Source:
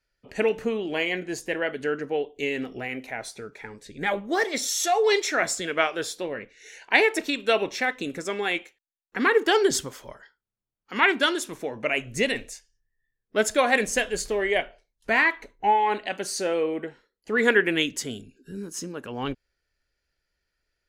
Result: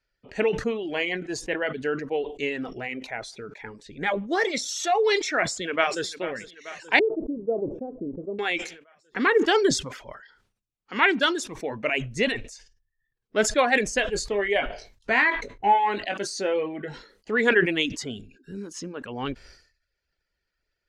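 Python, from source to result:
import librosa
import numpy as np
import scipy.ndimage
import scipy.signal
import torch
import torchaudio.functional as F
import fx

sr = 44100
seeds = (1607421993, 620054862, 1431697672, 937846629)

y = fx.echo_throw(x, sr, start_s=5.38, length_s=0.68, ms=440, feedback_pct=65, wet_db=-13.5)
y = fx.cheby2_lowpass(y, sr, hz=1800.0, order=4, stop_db=60, at=(6.99, 8.39))
y = fx.doubler(y, sr, ms=20.0, db=-8.5, at=(14.13, 17.31))
y = scipy.signal.sosfilt(scipy.signal.butter(2, 5900.0, 'lowpass', fs=sr, output='sos'), y)
y = fx.dereverb_blind(y, sr, rt60_s=0.58)
y = fx.sustainer(y, sr, db_per_s=99.0)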